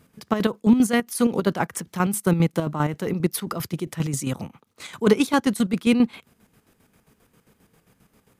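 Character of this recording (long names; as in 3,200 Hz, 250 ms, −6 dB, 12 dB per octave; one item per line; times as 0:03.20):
chopped level 7.5 Hz, depth 60%, duty 50%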